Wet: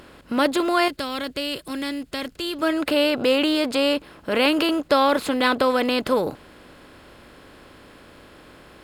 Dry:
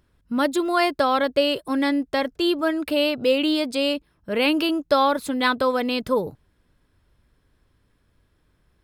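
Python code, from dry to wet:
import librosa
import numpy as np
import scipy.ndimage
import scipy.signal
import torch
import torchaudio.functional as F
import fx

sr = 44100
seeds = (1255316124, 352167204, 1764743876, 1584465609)

y = fx.bin_compress(x, sr, power=0.6)
y = fx.peak_eq(y, sr, hz=740.0, db=-13.5, octaves=2.9, at=(0.88, 2.62))
y = F.gain(torch.from_numpy(y), -1.5).numpy()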